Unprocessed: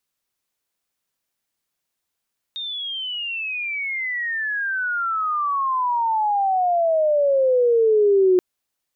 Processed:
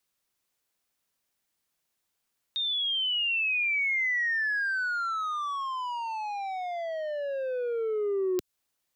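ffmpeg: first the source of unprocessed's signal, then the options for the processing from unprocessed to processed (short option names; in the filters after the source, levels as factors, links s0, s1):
-f lavfi -i "aevalsrc='pow(10,(-26.5+14.5*t/5.83)/20)*sin(2*PI*3700*5.83/log(360/3700)*(exp(log(360/3700)*t/5.83)-1))':d=5.83:s=44100"
-filter_complex "[0:a]acrossover=split=120|3000[s0][s1][s2];[s1]acompressor=threshold=0.0501:ratio=6[s3];[s0][s3][s2]amix=inputs=3:normalize=0,acrossover=split=270|360|1600[s4][s5][s6][s7];[s6]asoftclip=type=tanh:threshold=0.0178[s8];[s4][s5][s8][s7]amix=inputs=4:normalize=0"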